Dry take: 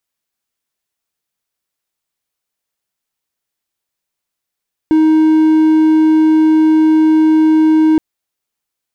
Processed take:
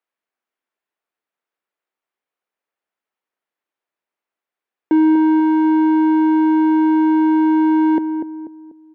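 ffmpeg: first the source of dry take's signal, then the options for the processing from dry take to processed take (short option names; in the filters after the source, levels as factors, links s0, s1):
-f lavfi -i "aevalsrc='0.596*(1-4*abs(mod(314*t+0.25,1)-0.5))':d=3.07:s=44100"
-filter_complex "[0:a]acrossover=split=250 2600:gain=0.0891 1 0.126[s0][s1][s2];[s0][s1][s2]amix=inputs=3:normalize=0,asplit=2[s3][s4];[s4]adelay=244,lowpass=f=990:p=1,volume=0.447,asplit=2[s5][s6];[s6]adelay=244,lowpass=f=990:p=1,volume=0.41,asplit=2[s7][s8];[s8]adelay=244,lowpass=f=990:p=1,volume=0.41,asplit=2[s9][s10];[s10]adelay=244,lowpass=f=990:p=1,volume=0.41,asplit=2[s11][s12];[s12]adelay=244,lowpass=f=990:p=1,volume=0.41[s13];[s3][s5][s7][s9][s11][s13]amix=inputs=6:normalize=0"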